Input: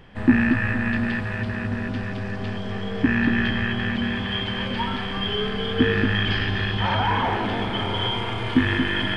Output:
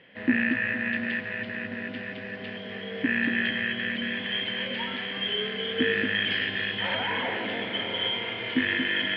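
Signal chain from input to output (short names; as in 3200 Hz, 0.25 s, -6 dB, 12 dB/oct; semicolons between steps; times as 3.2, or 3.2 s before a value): speaker cabinet 250–4000 Hz, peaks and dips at 370 Hz -5 dB, 520 Hz +5 dB, 840 Hz -9 dB, 1200 Hz -9 dB, 2000 Hz +8 dB, 2900 Hz +5 dB; 3.65–4.15 notch 840 Hz, Q 5.3; gain -4 dB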